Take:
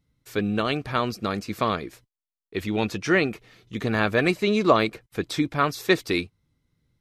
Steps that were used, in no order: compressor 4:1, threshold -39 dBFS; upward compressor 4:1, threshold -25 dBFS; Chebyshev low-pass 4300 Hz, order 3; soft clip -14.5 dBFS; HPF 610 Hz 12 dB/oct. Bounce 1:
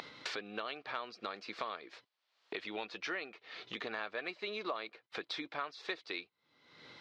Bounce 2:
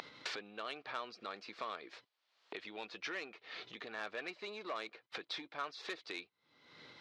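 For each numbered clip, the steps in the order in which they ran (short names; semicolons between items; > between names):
Chebyshev low-pass > upward compressor > HPF > compressor > soft clip; Chebyshev low-pass > soft clip > upward compressor > compressor > HPF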